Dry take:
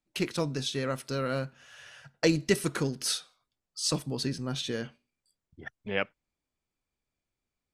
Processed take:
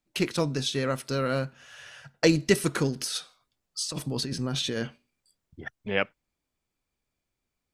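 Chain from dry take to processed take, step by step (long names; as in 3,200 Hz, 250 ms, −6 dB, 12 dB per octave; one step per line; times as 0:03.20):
0:02.96–0:05.62: compressor whose output falls as the input rises −34 dBFS, ratio −1
level +3.5 dB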